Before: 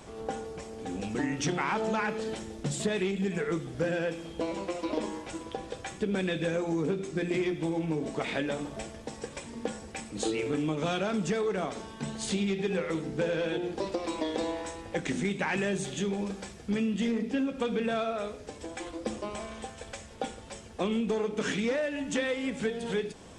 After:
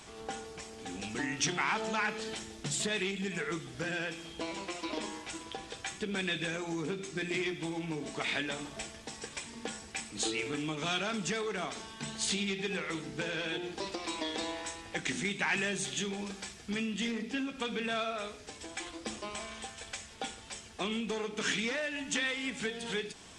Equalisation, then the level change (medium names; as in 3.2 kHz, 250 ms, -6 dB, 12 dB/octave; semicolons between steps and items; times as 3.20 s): tilt shelf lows -7 dB, about 1.4 kHz; peaking EQ 530 Hz -8.5 dB 0.22 oct; treble shelf 7.9 kHz -7.5 dB; 0.0 dB